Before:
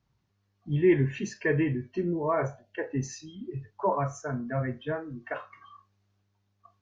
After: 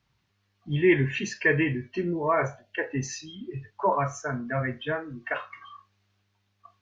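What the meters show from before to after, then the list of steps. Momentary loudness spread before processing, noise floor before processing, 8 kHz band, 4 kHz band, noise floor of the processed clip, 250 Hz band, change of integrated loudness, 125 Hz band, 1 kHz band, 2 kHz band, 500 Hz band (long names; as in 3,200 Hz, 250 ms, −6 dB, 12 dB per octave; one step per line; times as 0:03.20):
14 LU, −75 dBFS, can't be measured, +9.0 dB, −73 dBFS, +0.5 dB, +2.5 dB, 0.0 dB, +4.0 dB, +8.0 dB, +1.0 dB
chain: parametric band 2,700 Hz +10 dB 2.4 octaves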